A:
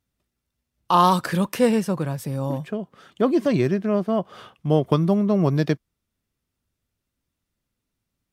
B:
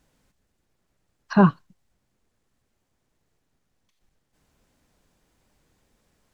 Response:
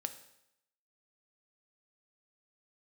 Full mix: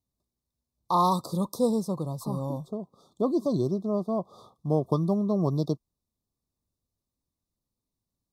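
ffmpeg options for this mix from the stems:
-filter_complex "[0:a]volume=-6dB[a];[1:a]agate=range=-33dB:threshold=-53dB:ratio=3:detection=peak,acompressor=threshold=-28dB:ratio=2,adelay=900,volume=-10dB[b];[a][b]amix=inputs=2:normalize=0,asuperstop=centerf=2100:order=20:qfactor=0.89"

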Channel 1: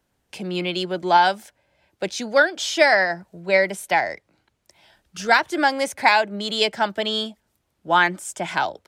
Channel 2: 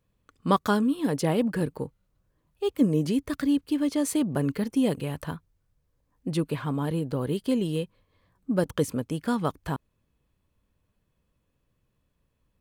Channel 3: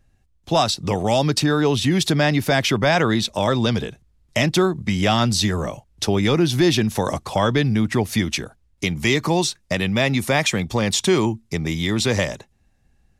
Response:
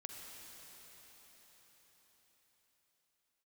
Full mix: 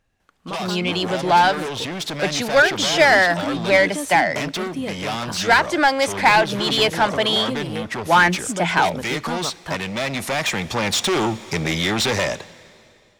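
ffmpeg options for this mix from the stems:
-filter_complex "[0:a]equalizer=f=170:t=o:w=0.26:g=11.5,adelay=200,volume=-1.5dB[a];[1:a]alimiter=limit=-19dB:level=0:latency=1:release=271,volume=-5dB[b];[2:a]asoftclip=type=tanh:threshold=-23dB,volume=-8dB,asplit=2[c][d];[d]volume=-11.5dB[e];[3:a]atrim=start_sample=2205[f];[e][f]afir=irnorm=-1:irlink=0[g];[a][b][c][g]amix=inputs=4:normalize=0,dynaudnorm=f=580:g=5:m=14dB,asplit=2[h][i];[i]highpass=f=720:p=1,volume=11dB,asoftclip=type=tanh:threshold=-9.5dB[j];[h][j]amix=inputs=2:normalize=0,lowpass=f=4.4k:p=1,volume=-6dB"

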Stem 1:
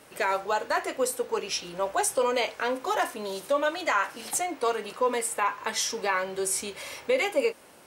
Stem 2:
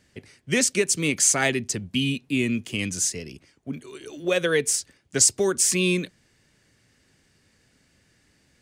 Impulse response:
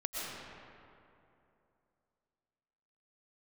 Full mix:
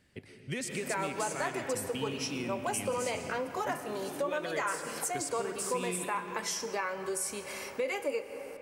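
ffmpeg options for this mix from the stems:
-filter_complex "[0:a]equalizer=f=3.6k:w=3.1:g=-8,adelay=700,volume=-2dB,asplit=2[a][b];[b]volume=-14.5dB[c];[1:a]equalizer=f=6.2k:t=o:w=0.65:g=-8,acompressor=threshold=-27dB:ratio=3,volume=-8dB,asplit=2[d][e];[e]volume=-3.5dB[f];[2:a]atrim=start_sample=2205[g];[c][f]amix=inputs=2:normalize=0[h];[h][g]afir=irnorm=-1:irlink=0[i];[a][d][i]amix=inputs=3:normalize=0,acompressor=threshold=-35dB:ratio=2"

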